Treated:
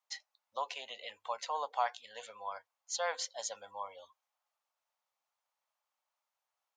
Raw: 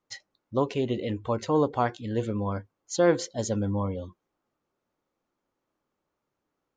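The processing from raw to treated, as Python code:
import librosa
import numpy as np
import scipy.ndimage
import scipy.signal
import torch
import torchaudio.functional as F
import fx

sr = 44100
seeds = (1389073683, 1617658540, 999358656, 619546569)

y = fx.dynamic_eq(x, sr, hz=7700.0, q=1.3, threshold_db=-49.0, ratio=4.0, max_db=-4)
y = scipy.signal.sosfilt(scipy.signal.cheby2(4, 40, 370.0, 'highpass', fs=sr, output='sos'), y)
y = fx.peak_eq(y, sr, hz=1400.0, db=-6.5, octaves=1.2)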